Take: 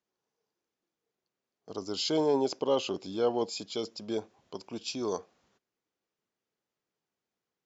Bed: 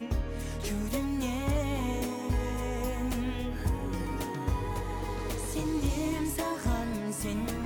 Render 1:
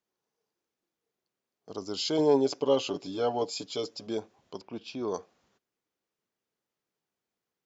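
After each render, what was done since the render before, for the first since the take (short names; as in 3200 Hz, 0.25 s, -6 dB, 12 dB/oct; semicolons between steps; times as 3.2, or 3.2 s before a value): 2.18–4.07 comb 7 ms; 4.61–5.14 LPF 2900 Hz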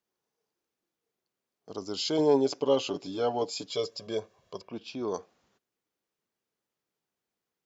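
3.7–4.72 comb 1.8 ms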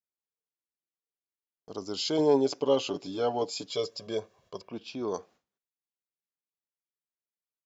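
gate with hold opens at -58 dBFS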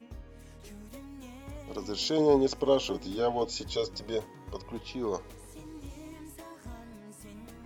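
add bed -15 dB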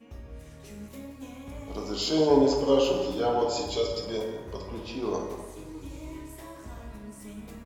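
outdoor echo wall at 30 m, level -11 dB; plate-style reverb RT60 1.2 s, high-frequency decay 0.5×, DRR -0.5 dB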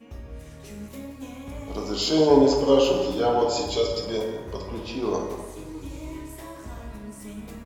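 gain +4 dB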